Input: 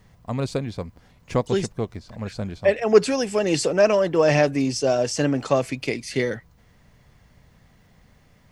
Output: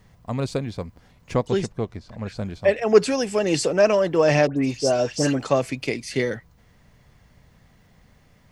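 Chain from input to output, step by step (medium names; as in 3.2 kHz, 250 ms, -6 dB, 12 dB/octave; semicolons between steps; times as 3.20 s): 1.33–2.37 s: treble shelf 6.4 kHz -7 dB; 4.47–5.39 s: phase dispersion highs, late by 100 ms, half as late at 2.1 kHz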